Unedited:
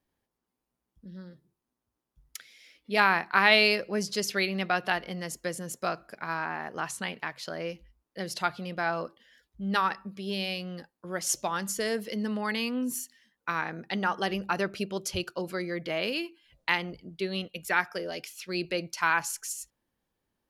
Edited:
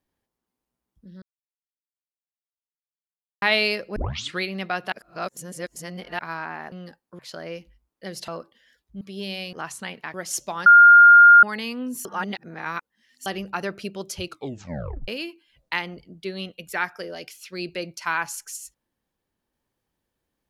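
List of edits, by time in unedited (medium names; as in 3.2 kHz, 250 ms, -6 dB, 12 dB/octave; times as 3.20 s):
1.22–3.42 s: mute
3.96 s: tape start 0.45 s
4.92–6.19 s: reverse
6.72–7.33 s: swap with 10.63–11.10 s
8.42–8.93 s: delete
9.66–10.11 s: delete
11.62–12.39 s: bleep 1.41 kHz -6.5 dBFS
13.01–14.22 s: reverse
15.22 s: tape stop 0.82 s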